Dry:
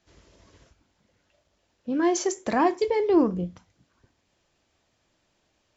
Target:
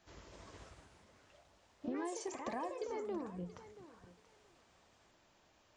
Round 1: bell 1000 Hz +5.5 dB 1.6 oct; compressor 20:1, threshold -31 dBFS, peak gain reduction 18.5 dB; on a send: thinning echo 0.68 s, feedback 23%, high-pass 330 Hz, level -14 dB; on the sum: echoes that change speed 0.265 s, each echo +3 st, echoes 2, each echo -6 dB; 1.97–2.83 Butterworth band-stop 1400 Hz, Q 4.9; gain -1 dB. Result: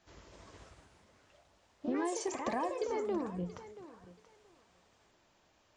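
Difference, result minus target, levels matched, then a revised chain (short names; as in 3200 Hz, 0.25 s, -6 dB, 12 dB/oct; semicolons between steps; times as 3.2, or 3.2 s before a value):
compressor: peak gain reduction -6 dB
bell 1000 Hz +5.5 dB 1.6 oct; compressor 20:1, threshold -37.5 dBFS, peak gain reduction 25 dB; on a send: thinning echo 0.68 s, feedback 23%, high-pass 330 Hz, level -14 dB; on the sum: echoes that change speed 0.265 s, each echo +3 st, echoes 2, each echo -6 dB; 1.97–2.83 Butterworth band-stop 1400 Hz, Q 4.9; gain -1 dB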